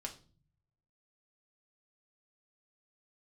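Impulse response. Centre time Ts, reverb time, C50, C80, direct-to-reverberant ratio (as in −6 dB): 10 ms, 0.40 s, 13.0 dB, 18.0 dB, 0.5 dB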